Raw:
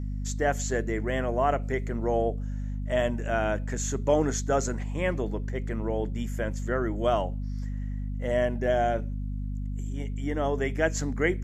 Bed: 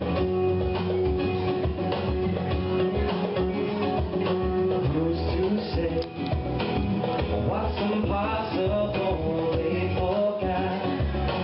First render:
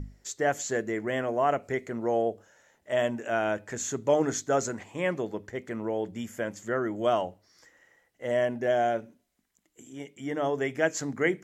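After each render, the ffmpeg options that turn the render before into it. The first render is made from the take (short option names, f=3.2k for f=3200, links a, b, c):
-af "bandreject=f=50:t=h:w=6,bandreject=f=100:t=h:w=6,bandreject=f=150:t=h:w=6,bandreject=f=200:t=h:w=6,bandreject=f=250:t=h:w=6,bandreject=f=300:t=h:w=6"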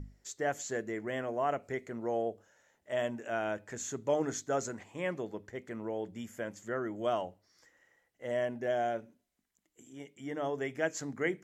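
-af "volume=-6.5dB"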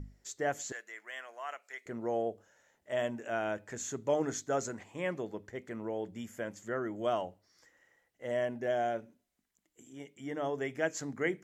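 -filter_complex "[0:a]asettb=1/sr,asplit=3[a][b][c];[a]atrim=end=0.724[d];[b]atrim=start=0.72:end=1.86,asetpts=PTS-STARTPTS,afade=t=in:d=0.004:c=qsin,afade=t=out:st=1.136:d=0.004:c=qsin,highpass=1.4k[e];[c]atrim=start=1.856[f];[d][e]acrossfade=d=0.004:c1=hsin:c2=qsin[g];[g][f]acrossfade=d=0.004:c1=qsin:c2=hsin"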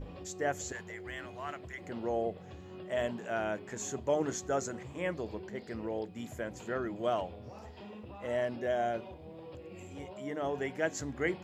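-filter_complex "[1:a]volume=-22dB[a];[0:a][a]amix=inputs=2:normalize=0"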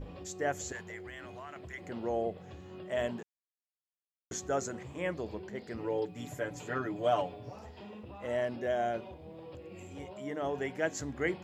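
-filter_complex "[0:a]asettb=1/sr,asplit=3[a][b][c];[a]atrim=end=0.974[d];[b]atrim=start=0.97:end=1.56,asetpts=PTS-STARTPTS,afade=t=in:d=0.004:c=qsin,afade=t=out:st=0.586:d=0.004:c=qsin,acompressor=threshold=-41dB:ratio=6:attack=3.2:release=140:knee=1:detection=peak[e];[c]atrim=start=1.556[f];[d][e]acrossfade=d=0.004:c1=hsin:c2=qsin[g];[g][f]acrossfade=d=0.004:c1=qsin:c2=hsin,asettb=1/sr,asplit=3[h][i][j];[h]atrim=end=5.774[k];[i]atrim=start=5.77:end=7.56,asetpts=PTS-STARTPTS,afade=t=in:d=0.004:c=qsin,afade=t=out:st=1.786:d=0.004:c=qsin,aecho=1:1:6.9:0.88,atrim=end_sample=78939[l];[j]atrim=start=7.556[m];[k][l]acrossfade=d=0.004:c1=hsin:c2=qsin[n];[n][m]acrossfade=d=0.004:c1=qsin:c2=hsin,asplit=3[o][p][q];[o]atrim=end=3.23,asetpts=PTS-STARTPTS,afade=t=out:st=3.226:d=0.004:c=hsin[r];[p]atrim=start=3.23:end=4.31,asetpts=PTS-STARTPTS,volume=0[s];[q]atrim=start=4.31,asetpts=PTS-STARTPTS,afade=t=in:d=0.004:c=hsin[t];[r][s][t]concat=n=3:v=0:a=1"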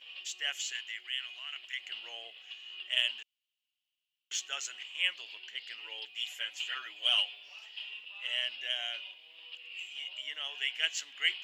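-filter_complex "[0:a]highpass=f=2.9k:t=q:w=9.8,asplit=2[a][b];[b]adynamicsmooth=sensitivity=5:basefreq=5.2k,volume=0dB[c];[a][c]amix=inputs=2:normalize=0"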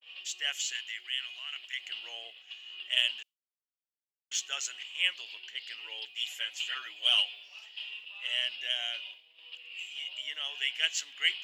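-af "agate=range=-33dB:threshold=-48dB:ratio=3:detection=peak,adynamicequalizer=threshold=0.00708:dfrequency=2700:dqfactor=0.7:tfrequency=2700:tqfactor=0.7:attack=5:release=100:ratio=0.375:range=2:mode=boostabove:tftype=highshelf"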